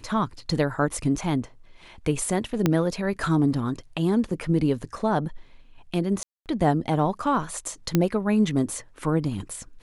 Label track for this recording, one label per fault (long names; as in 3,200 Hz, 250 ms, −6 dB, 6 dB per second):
2.660000	2.660000	click −7 dBFS
6.230000	6.460000	drop-out 228 ms
7.950000	7.950000	click −7 dBFS